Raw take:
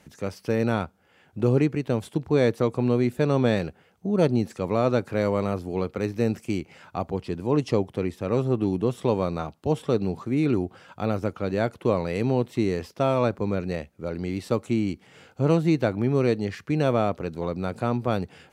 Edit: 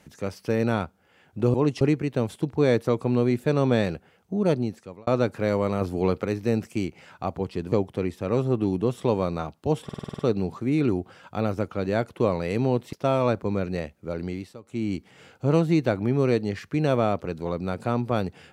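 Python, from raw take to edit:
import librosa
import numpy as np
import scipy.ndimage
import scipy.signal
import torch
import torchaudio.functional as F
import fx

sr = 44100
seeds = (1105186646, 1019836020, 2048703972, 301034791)

y = fx.edit(x, sr, fx.fade_out_span(start_s=4.11, length_s=0.69),
    fx.clip_gain(start_s=5.54, length_s=0.43, db=4.0),
    fx.move(start_s=7.45, length_s=0.27, to_s=1.54),
    fx.stutter(start_s=9.84, slice_s=0.05, count=8),
    fx.cut(start_s=12.58, length_s=0.31),
    fx.fade_down_up(start_s=14.2, length_s=0.71, db=-20.0, fade_s=0.33), tone=tone)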